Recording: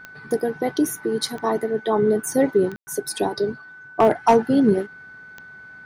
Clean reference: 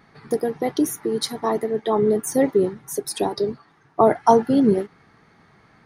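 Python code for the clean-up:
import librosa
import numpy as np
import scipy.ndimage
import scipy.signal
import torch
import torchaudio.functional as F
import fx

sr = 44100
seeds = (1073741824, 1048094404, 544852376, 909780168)

y = fx.fix_declip(x, sr, threshold_db=-8.0)
y = fx.fix_declick_ar(y, sr, threshold=10.0)
y = fx.notch(y, sr, hz=1500.0, q=30.0)
y = fx.fix_ambience(y, sr, seeds[0], print_start_s=4.88, print_end_s=5.38, start_s=2.76, end_s=2.87)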